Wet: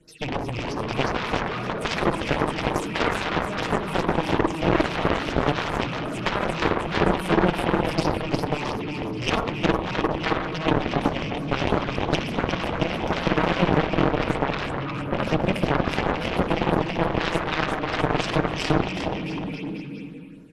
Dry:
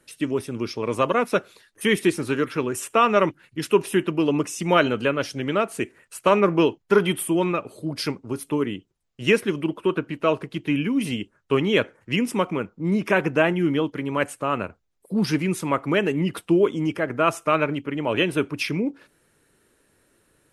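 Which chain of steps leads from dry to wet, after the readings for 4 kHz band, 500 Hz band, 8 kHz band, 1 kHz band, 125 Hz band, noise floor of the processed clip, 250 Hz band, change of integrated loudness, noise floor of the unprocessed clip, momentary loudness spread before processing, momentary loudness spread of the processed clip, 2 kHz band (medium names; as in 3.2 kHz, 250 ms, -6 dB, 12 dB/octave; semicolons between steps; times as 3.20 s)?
+1.5 dB, -3.0 dB, -6.0 dB, +1.5 dB, +2.5 dB, -32 dBFS, -2.0 dB, -1.5 dB, -67 dBFS, 8 LU, 7 LU, 0.0 dB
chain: rattle on loud lows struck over -30 dBFS, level -18 dBFS; bass shelf 450 Hz +7 dB; comb 6.4 ms, depth 51%; spring tank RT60 1.1 s, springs 50/59 ms, chirp 30 ms, DRR 1 dB; phase shifter stages 6, 3 Hz, lowest notch 400–3000 Hz; compression 3:1, threshold -21 dBFS, peak gain reduction 11 dB; bouncing-ball echo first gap 360 ms, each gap 0.85×, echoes 5; Chebyshev shaper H 4 -12 dB, 7 -9 dB, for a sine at -7.5 dBFS; distance through air 51 m; trim -3 dB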